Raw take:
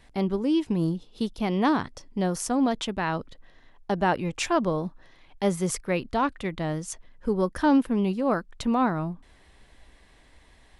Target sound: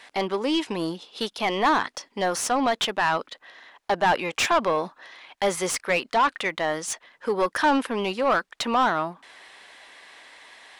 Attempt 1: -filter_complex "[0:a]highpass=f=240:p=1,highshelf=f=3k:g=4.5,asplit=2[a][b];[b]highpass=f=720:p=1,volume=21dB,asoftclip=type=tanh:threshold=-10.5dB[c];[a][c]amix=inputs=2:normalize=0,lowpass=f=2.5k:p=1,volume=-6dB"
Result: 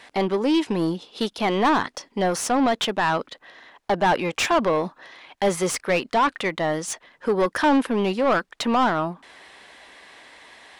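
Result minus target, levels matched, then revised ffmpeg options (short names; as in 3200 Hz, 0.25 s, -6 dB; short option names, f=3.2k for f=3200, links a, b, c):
250 Hz band +3.5 dB
-filter_complex "[0:a]highpass=f=740:p=1,highshelf=f=3k:g=4.5,asplit=2[a][b];[b]highpass=f=720:p=1,volume=21dB,asoftclip=type=tanh:threshold=-10.5dB[c];[a][c]amix=inputs=2:normalize=0,lowpass=f=2.5k:p=1,volume=-6dB"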